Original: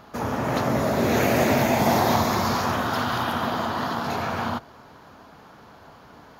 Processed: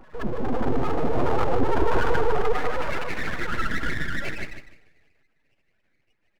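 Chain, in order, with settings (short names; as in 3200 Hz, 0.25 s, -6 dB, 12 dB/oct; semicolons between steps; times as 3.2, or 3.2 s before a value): spectral contrast raised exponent 3.7; high-pass sweep 100 Hz -> 2700 Hz, 1.55–5.37; full-wave rectifier; on a send: feedback echo 0.153 s, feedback 18%, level -9.5 dB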